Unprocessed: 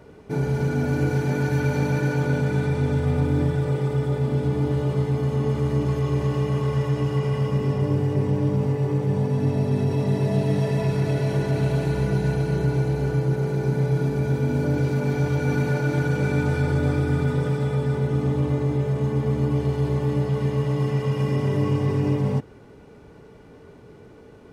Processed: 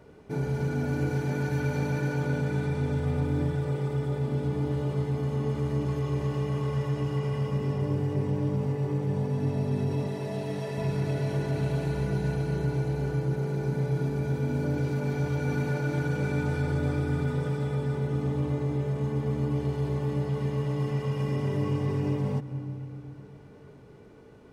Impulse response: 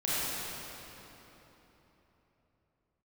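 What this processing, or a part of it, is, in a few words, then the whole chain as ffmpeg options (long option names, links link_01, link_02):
ducked reverb: -filter_complex "[0:a]asplit=3[link_01][link_02][link_03];[1:a]atrim=start_sample=2205[link_04];[link_02][link_04]afir=irnorm=-1:irlink=0[link_05];[link_03]apad=whole_len=1081689[link_06];[link_05][link_06]sidechaincompress=threshold=-29dB:ratio=8:attack=16:release=162,volume=-21dB[link_07];[link_01][link_07]amix=inputs=2:normalize=0,asettb=1/sr,asplit=3[link_08][link_09][link_10];[link_08]atrim=end=10.074[link_11];[link_09]atrim=start=10.07:end=10.78,asetpts=PTS-STARTPTS,afade=type=in:duration=0.004:curve=qsin,afade=type=out:start_time=0.706:duration=0.004:curve=qsin,lowshelf=frequency=210:gain=-10.5[link_12];[link_10]atrim=start=10.776[link_13];[link_11][link_12]acrossfade=duration=0.004:curve1=hsin:curve2=qsin[link_14];[link_14][link_13]acrossfade=duration=0.004:curve1=qsin:curve2=hsin,volume=-6dB"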